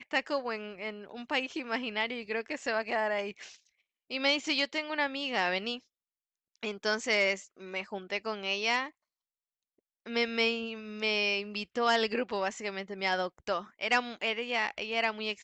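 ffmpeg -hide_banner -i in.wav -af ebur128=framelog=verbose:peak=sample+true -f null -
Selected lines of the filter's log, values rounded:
Integrated loudness:
  I:         -31.5 LUFS
  Threshold: -41.6 LUFS
Loudness range:
  LRA:         2.8 LU
  Threshold: -52.0 LUFS
  LRA low:   -33.5 LUFS
  LRA high:  -30.7 LUFS
Sample peak:
  Peak:      -13.9 dBFS
True peak:
  Peak:      -13.9 dBFS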